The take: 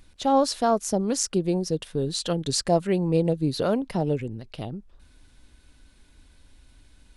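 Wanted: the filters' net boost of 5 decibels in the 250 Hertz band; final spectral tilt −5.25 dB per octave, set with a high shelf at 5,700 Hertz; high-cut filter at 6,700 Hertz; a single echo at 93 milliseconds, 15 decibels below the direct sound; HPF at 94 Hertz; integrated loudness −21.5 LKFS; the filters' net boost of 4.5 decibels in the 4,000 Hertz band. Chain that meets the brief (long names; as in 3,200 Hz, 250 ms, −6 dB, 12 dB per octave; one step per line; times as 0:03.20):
high-pass filter 94 Hz
low-pass filter 6,700 Hz
parametric band 250 Hz +7 dB
parametric band 4,000 Hz +3 dB
high-shelf EQ 5,700 Hz +7.5 dB
single-tap delay 93 ms −15 dB
level +0.5 dB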